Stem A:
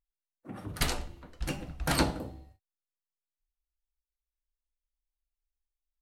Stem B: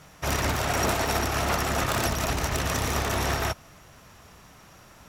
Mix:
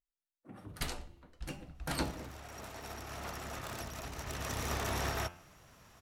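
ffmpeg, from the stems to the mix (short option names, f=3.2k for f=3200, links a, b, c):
-filter_complex "[0:a]volume=-8.5dB[a];[1:a]bandreject=f=87.48:t=h:w=4,bandreject=f=174.96:t=h:w=4,bandreject=f=262.44:t=h:w=4,bandreject=f=349.92:t=h:w=4,bandreject=f=437.4:t=h:w=4,bandreject=f=524.88:t=h:w=4,bandreject=f=612.36:t=h:w=4,bandreject=f=699.84:t=h:w=4,bandreject=f=787.32:t=h:w=4,bandreject=f=874.8:t=h:w=4,bandreject=f=962.28:t=h:w=4,bandreject=f=1.04976k:t=h:w=4,bandreject=f=1.13724k:t=h:w=4,bandreject=f=1.22472k:t=h:w=4,bandreject=f=1.3122k:t=h:w=4,bandreject=f=1.39968k:t=h:w=4,bandreject=f=1.48716k:t=h:w=4,bandreject=f=1.57464k:t=h:w=4,bandreject=f=1.66212k:t=h:w=4,bandreject=f=1.7496k:t=h:w=4,bandreject=f=1.83708k:t=h:w=4,bandreject=f=1.92456k:t=h:w=4,bandreject=f=2.01204k:t=h:w=4,bandreject=f=2.09952k:t=h:w=4,bandreject=f=2.187k:t=h:w=4,bandreject=f=2.27448k:t=h:w=4,bandreject=f=2.36196k:t=h:w=4,bandreject=f=2.44944k:t=h:w=4,bandreject=f=2.53692k:t=h:w=4,bandreject=f=2.6244k:t=h:w=4,bandreject=f=2.71188k:t=h:w=4,bandreject=f=2.79936k:t=h:w=4,bandreject=f=2.88684k:t=h:w=4,bandreject=f=2.97432k:t=h:w=4,bandreject=f=3.0618k:t=h:w=4,bandreject=f=3.14928k:t=h:w=4,bandreject=f=3.23676k:t=h:w=4,bandreject=f=3.32424k:t=h:w=4,bandreject=f=3.41172k:t=h:w=4,adelay=1750,volume=-8.5dB,afade=t=in:st=2.51:d=0.79:silence=0.446684,afade=t=in:st=4.14:d=0.64:silence=0.398107[b];[a][b]amix=inputs=2:normalize=0"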